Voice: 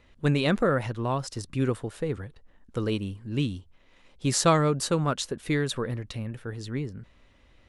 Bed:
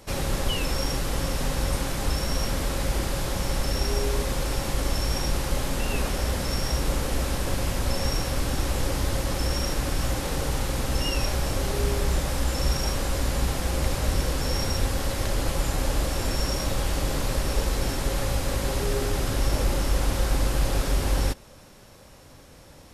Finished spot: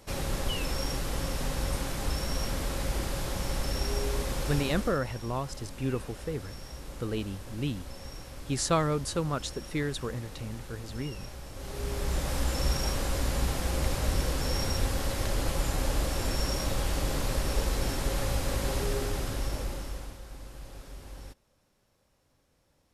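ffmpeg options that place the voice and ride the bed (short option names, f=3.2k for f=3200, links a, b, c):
-filter_complex "[0:a]adelay=4250,volume=-5dB[a];[1:a]volume=8.5dB,afade=t=out:st=4.59:d=0.4:silence=0.251189,afade=t=in:st=11.53:d=0.83:silence=0.211349,afade=t=out:st=18.77:d=1.42:silence=0.133352[b];[a][b]amix=inputs=2:normalize=0"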